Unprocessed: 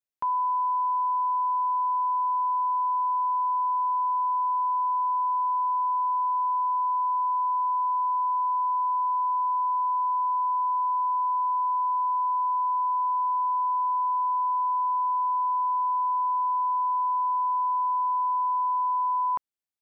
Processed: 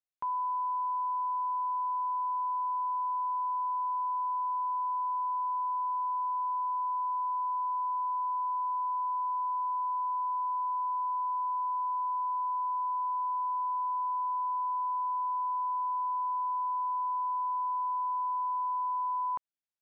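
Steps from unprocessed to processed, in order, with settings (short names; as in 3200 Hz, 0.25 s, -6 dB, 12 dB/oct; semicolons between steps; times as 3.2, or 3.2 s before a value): air absorption 57 m; gain -6 dB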